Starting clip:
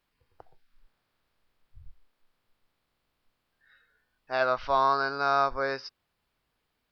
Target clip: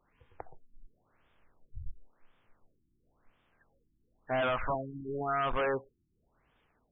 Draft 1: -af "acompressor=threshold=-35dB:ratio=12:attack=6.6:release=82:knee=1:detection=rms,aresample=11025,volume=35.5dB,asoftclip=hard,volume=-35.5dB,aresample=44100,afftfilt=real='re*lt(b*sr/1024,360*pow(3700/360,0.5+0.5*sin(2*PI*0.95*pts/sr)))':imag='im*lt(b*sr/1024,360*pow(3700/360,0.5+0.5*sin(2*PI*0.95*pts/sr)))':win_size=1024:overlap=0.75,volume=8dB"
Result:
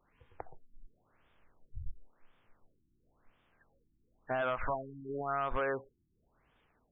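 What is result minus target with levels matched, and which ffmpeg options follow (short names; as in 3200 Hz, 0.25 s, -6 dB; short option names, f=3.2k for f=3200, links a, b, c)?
compressor: peak gain reduction +8.5 dB
-af "acompressor=threshold=-25.5dB:ratio=12:attack=6.6:release=82:knee=1:detection=rms,aresample=11025,volume=35.5dB,asoftclip=hard,volume=-35.5dB,aresample=44100,afftfilt=real='re*lt(b*sr/1024,360*pow(3700/360,0.5+0.5*sin(2*PI*0.95*pts/sr)))':imag='im*lt(b*sr/1024,360*pow(3700/360,0.5+0.5*sin(2*PI*0.95*pts/sr)))':win_size=1024:overlap=0.75,volume=8dB"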